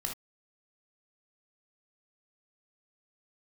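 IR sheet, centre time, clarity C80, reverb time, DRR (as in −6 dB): 20 ms, 21.0 dB, non-exponential decay, 0.0 dB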